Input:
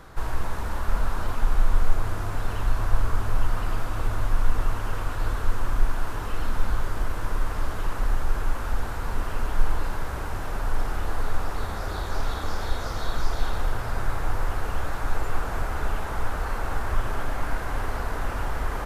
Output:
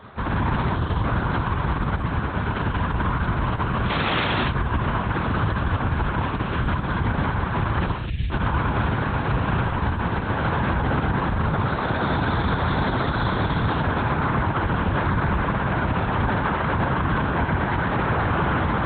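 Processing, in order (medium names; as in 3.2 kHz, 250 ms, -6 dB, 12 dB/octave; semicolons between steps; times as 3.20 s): 3.85–4.26 s: formants flattened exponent 0.3; 7.83–8.31 s: inverse Chebyshev band-stop 490–1100 Hz, stop band 60 dB; gated-style reverb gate 280 ms flat, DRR -6 dB; 0.75–1.04 s: time-frequency box 490–2800 Hz -7 dB; LPC vocoder at 8 kHz whisper; level rider; high-pass 84 Hz 12 dB/octave; peak limiter -13.5 dBFS, peak gain reduction 10 dB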